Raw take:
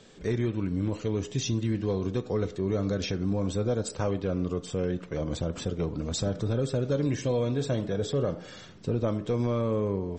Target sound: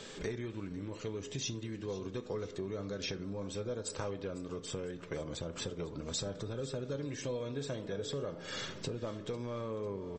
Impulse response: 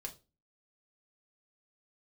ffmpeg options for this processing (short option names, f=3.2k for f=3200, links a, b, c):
-filter_complex "[0:a]acompressor=threshold=-40dB:ratio=10,lowshelf=f=370:g=-7.5,bandreject=f=740:w=12,aecho=1:1:499|998|1497|1996:0.126|0.0579|0.0266|0.0123,asplit=2[a][b];[1:a]atrim=start_sample=2205[c];[b][c]afir=irnorm=-1:irlink=0,volume=-7dB[d];[a][d]amix=inputs=2:normalize=0,volume=6.5dB"